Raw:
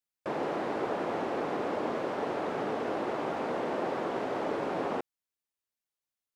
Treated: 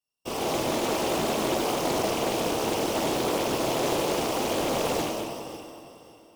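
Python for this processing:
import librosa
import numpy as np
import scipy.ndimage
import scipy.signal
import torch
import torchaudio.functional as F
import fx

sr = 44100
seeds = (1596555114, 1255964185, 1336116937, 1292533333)

y = np.r_[np.sort(x[:len(x) // 16 * 16].reshape(-1, 16), axis=1).ravel(), x[len(x) // 16 * 16:]]
y = fx.band_shelf(y, sr, hz=1900.0, db=-11.0, octaves=1.0)
y = fx.whisperise(y, sr, seeds[0])
y = fx.echo_feedback(y, sr, ms=553, feedback_pct=31, wet_db=-16.0)
y = fx.rev_plate(y, sr, seeds[1], rt60_s=2.2, hf_ratio=0.9, predelay_ms=0, drr_db=-5.5)
y = fx.doppler_dist(y, sr, depth_ms=0.45)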